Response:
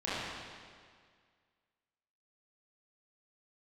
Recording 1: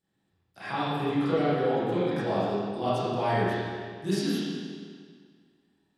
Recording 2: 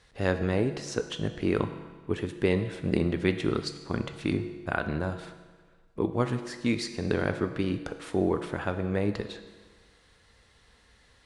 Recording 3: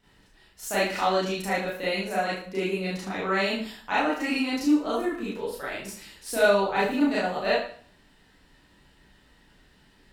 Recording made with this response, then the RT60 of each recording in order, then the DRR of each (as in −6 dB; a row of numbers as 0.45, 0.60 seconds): 1; 1.9, 1.4, 0.50 seconds; −11.5, 8.0, −9.0 decibels